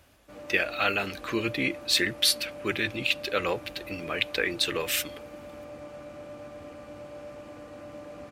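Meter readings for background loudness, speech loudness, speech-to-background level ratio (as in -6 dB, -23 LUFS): -43.0 LUFS, -27.5 LUFS, 15.5 dB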